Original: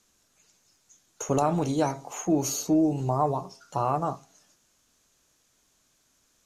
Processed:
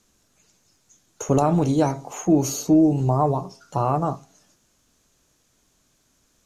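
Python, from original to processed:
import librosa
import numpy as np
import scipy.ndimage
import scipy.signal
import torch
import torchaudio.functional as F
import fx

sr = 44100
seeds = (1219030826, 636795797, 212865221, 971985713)

y = fx.low_shelf(x, sr, hz=480.0, db=7.0)
y = F.gain(torch.from_numpy(y), 1.5).numpy()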